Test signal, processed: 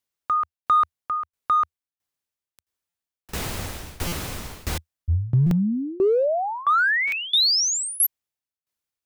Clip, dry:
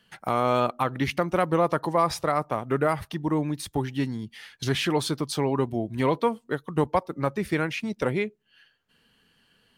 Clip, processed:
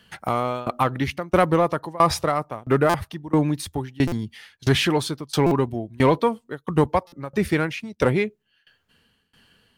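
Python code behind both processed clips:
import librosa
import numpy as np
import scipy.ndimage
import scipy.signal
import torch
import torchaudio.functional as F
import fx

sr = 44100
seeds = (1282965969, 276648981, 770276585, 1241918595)

p1 = fx.peak_eq(x, sr, hz=81.0, db=8.0, octaves=0.63)
p2 = fx.tremolo_shape(p1, sr, shape='saw_down', hz=1.5, depth_pct=95)
p3 = np.clip(p2, -10.0 ** (-25.5 / 20.0), 10.0 ** (-25.5 / 20.0))
p4 = p2 + F.gain(torch.from_numpy(p3), -10.0).numpy()
p5 = fx.buffer_glitch(p4, sr, at_s=(2.89, 4.07, 5.46, 7.07), block=256, repeats=8)
y = F.gain(torch.from_numpy(p5), 5.5).numpy()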